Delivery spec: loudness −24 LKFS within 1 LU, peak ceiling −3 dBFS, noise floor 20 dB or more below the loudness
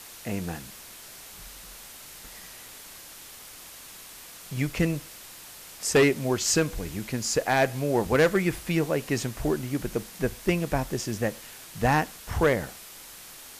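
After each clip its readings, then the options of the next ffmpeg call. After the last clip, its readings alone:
background noise floor −46 dBFS; target noise floor −47 dBFS; integrated loudness −26.5 LKFS; sample peak −13.5 dBFS; target loudness −24.0 LKFS
→ -af "afftdn=noise_reduction=6:noise_floor=-46"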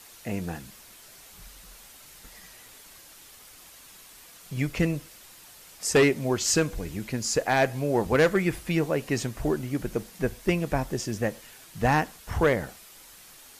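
background noise floor −50 dBFS; integrated loudness −26.5 LKFS; sample peak −13.0 dBFS; target loudness −24.0 LKFS
→ -af "volume=2.5dB"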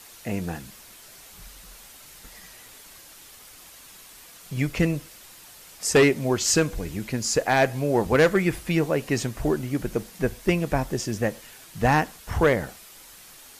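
integrated loudness −24.0 LKFS; sample peak −10.5 dBFS; background noise floor −48 dBFS

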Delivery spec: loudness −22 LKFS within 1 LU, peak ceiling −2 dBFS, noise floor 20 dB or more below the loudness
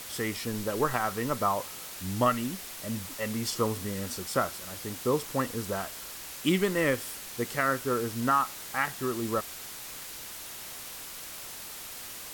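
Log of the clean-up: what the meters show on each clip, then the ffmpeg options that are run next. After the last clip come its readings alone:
background noise floor −42 dBFS; target noise floor −51 dBFS; integrated loudness −31.0 LKFS; sample peak −12.0 dBFS; target loudness −22.0 LKFS
→ -af "afftdn=noise_reduction=9:noise_floor=-42"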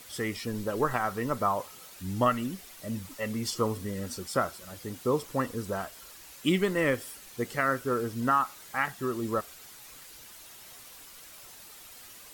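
background noise floor −50 dBFS; target noise floor −51 dBFS
→ -af "afftdn=noise_reduction=6:noise_floor=-50"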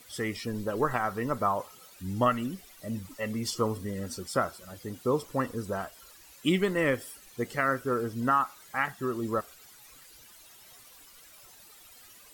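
background noise floor −54 dBFS; integrated loudness −30.5 LKFS; sample peak −12.5 dBFS; target loudness −22.0 LKFS
→ -af "volume=8.5dB"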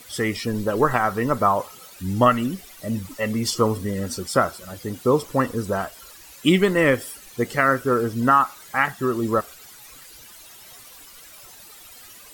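integrated loudness −22.0 LKFS; sample peak −4.0 dBFS; background noise floor −45 dBFS

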